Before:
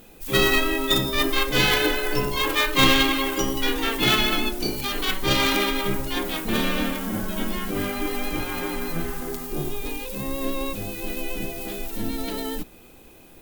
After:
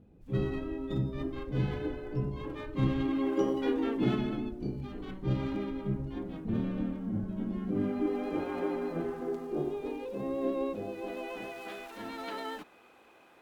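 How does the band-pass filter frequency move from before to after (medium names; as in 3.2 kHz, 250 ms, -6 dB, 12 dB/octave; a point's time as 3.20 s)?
band-pass filter, Q 1.1
2.95 s 110 Hz
3.48 s 460 Hz
4.51 s 120 Hz
7.38 s 120 Hz
8.34 s 440 Hz
10.78 s 440 Hz
11.56 s 1.2 kHz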